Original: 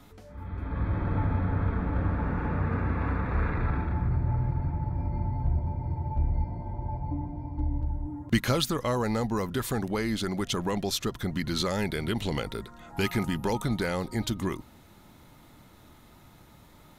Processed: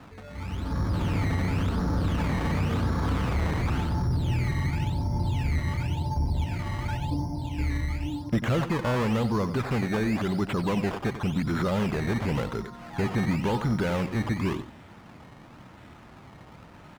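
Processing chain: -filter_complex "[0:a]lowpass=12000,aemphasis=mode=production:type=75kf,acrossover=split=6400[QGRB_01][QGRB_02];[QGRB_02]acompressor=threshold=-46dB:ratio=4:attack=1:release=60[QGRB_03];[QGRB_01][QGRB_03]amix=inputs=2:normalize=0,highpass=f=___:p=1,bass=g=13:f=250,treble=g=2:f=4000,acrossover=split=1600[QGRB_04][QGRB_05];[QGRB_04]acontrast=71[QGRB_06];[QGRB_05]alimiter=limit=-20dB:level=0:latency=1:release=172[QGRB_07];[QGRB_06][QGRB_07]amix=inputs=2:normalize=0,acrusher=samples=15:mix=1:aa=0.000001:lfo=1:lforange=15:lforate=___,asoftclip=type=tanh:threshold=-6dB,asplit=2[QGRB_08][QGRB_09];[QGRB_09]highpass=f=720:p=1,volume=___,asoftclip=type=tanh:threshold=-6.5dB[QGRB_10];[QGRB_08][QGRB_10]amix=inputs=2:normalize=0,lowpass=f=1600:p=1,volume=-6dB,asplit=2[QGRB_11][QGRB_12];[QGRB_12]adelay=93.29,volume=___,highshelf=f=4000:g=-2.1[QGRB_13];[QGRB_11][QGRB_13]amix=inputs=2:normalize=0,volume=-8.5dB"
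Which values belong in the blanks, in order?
72, 0.93, 15dB, -12dB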